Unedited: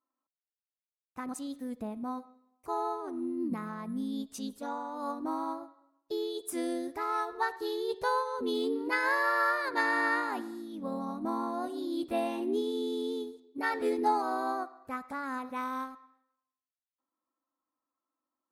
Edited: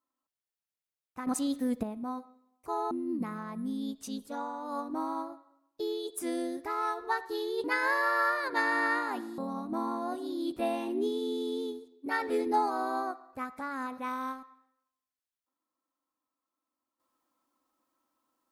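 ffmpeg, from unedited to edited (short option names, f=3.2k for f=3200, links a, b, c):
-filter_complex "[0:a]asplit=6[a][b][c][d][e][f];[a]atrim=end=1.272[g];[b]atrim=start=1.268:end=1.832,asetpts=PTS-STARTPTS,volume=8dB[h];[c]atrim=start=1.828:end=2.912[i];[d]atrim=start=3.218:end=7.952[j];[e]atrim=start=8.848:end=10.592[k];[f]atrim=start=10.898[l];[g][h]acrossfade=d=0.004:c1=hsin:c2=hsin[m];[m][i]acrossfade=d=0.004:c1=hsin:c2=hsin[n];[n][j]acrossfade=d=0.004:c1=hsin:c2=hsin[o];[o][k]acrossfade=d=0.004:c1=hsin:c2=hsin[p];[p][l]acrossfade=d=0.004:c1=hsin:c2=hsin"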